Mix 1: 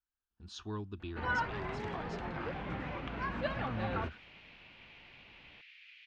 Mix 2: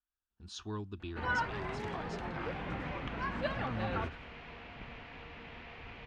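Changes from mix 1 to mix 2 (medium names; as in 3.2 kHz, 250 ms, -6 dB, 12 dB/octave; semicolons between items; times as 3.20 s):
second sound: remove inverse Chebyshev high-pass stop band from 880 Hz, stop band 50 dB; master: remove distance through air 56 m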